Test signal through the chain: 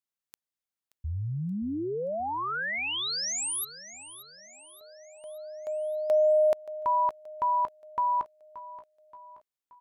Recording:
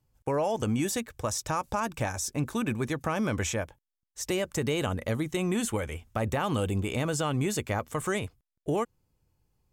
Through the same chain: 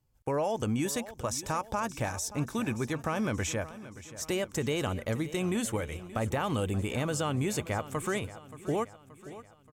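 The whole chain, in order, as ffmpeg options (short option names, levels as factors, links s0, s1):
-af "aecho=1:1:577|1154|1731|2308|2885:0.168|0.0856|0.0437|0.0223|0.0114,volume=0.794"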